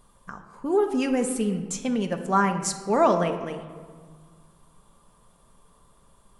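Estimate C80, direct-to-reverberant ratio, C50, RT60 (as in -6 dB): 10.5 dB, 4.5 dB, 9.0 dB, 1.7 s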